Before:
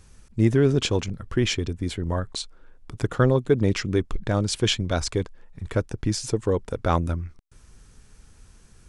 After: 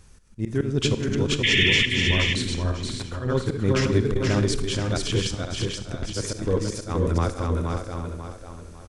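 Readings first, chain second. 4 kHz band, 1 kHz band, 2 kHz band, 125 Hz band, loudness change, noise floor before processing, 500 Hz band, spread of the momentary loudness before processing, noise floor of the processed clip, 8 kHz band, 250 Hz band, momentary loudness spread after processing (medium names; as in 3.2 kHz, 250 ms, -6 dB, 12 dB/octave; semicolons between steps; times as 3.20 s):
+6.0 dB, -1.5 dB, +9.0 dB, +0.5 dB, +1.0 dB, -54 dBFS, -1.5 dB, 12 LU, -44 dBFS, +1.5 dB, -0.5 dB, 13 LU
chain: backward echo that repeats 272 ms, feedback 56%, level -3 dB; dynamic bell 730 Hz, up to -5 dB, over -35 dBFS, Q 1.3; slow attack 185 ms; painted sound noise, 1.43–1.86 s, 1.7–3.6 kHz -20 dBFS; on a send: delay 477 ms -4.5 dB; on the sum: Schroeder reverb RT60 0.78 s, combs from 32 ms, DRR 12 dB; transformer saturation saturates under 110 Hz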